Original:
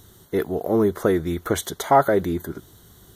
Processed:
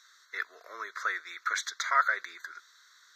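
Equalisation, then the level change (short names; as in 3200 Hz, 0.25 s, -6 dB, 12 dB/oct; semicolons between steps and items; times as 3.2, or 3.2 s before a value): HPF 1100 Hz 24 dB/oct; air absorption 97 m; fixed phaser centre 3000 Hz, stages 6; +5.0 dB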